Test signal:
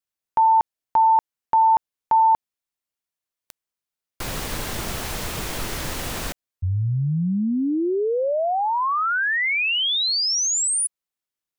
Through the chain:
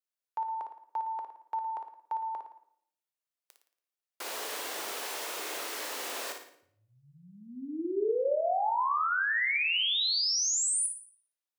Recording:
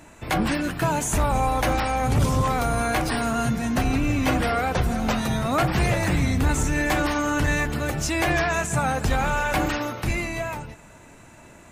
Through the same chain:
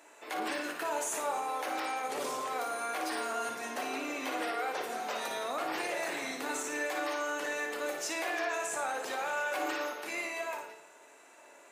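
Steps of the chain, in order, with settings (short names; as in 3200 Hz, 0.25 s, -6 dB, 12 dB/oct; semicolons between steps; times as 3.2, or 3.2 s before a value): HPF 380 Hz 24 dB/oct; limiter -19.5 dBFS; flutter echo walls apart 9.7 m, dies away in 0.49 s; shoebox room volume 140 m³, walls mixed, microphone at 0.32 m; gain -7.5 dB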